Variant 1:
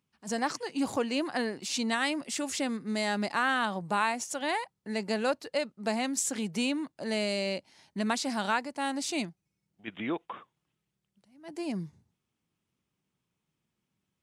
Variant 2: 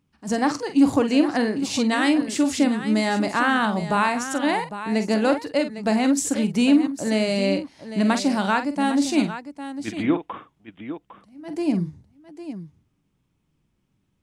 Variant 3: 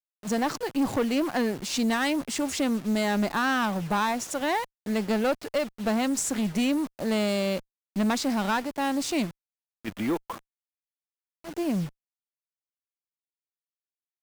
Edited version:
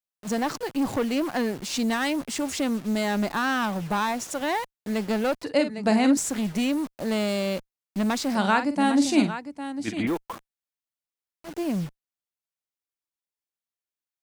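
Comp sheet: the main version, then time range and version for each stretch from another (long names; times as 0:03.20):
3
0:05.43–0:06.17: punch in from 2
0:08.35–0:10.07: punch in from 2
not used: 1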